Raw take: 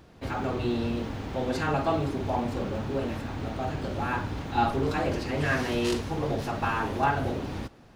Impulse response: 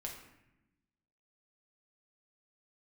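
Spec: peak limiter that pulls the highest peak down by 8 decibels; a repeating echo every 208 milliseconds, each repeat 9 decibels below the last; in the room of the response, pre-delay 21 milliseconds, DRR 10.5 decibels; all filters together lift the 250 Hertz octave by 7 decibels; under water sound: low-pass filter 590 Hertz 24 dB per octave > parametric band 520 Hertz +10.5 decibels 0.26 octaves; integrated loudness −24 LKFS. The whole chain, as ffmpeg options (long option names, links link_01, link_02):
-filter_complex "[0:a]equalizer=frequency=250:width_type=o:gain=8,alimiter=limit=-17dB:level=0:latency=1,aecho=1:1:208|416|624|832:0.355|0.124|0.0435|0.0152,asplit=2[link_01][link_02];[1:a]atrim=start_sample=2205,adelay=21[link_03];[link_02][link_03]afir=irnorm=-1:irlink=0,volume=-9dB[link_04];[link_01][link_04]amix=inputs=2:normalize=0,lowpass=frequency=590:width=0.5412,lowpass=frequency=590:width=1.3066,equalizer=frequency=520:width_type=o:width=0.26:gain=10.5,volume=2dB"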